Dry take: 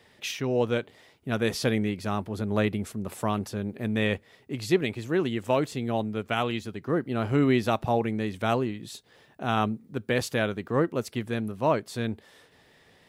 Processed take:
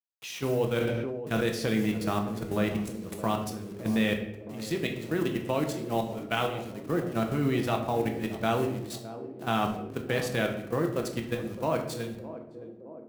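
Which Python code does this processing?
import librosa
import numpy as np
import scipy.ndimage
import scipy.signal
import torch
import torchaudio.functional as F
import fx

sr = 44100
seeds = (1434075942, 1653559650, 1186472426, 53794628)

p1 = fx.delta_hold(x, sr, step_db=-41.0)
p2 = scipy.signal.sosfilt(scipy.signal.butter(4, 78.0, 'highpass', fs=sr, output='sos'), p1)
p3 = fx.level_steps(p2, sr, step_db=14)
p4 = fx.high_shelf(p3, sr, hz=4800.0, db=4.5)
p5 = fx.wow_flutter(p4, sr, seeds[0], rate_hz=2.1, depth_cents=26.0)
p6 = p5 + fx.echo_banded(p5, sr, ms=615, feedback_pct=74, hz=370.0, wet_db=-12.5, dry=0)
p7 = fx.room_shoebox(p6, sr, seeds[1], volume_m3=210.0, walls='mixed', distance_m=0.7)
y = fx.sustainer(p7, sr, db_per_s=24.0, at=(0.79, 1.42), fade=0.02)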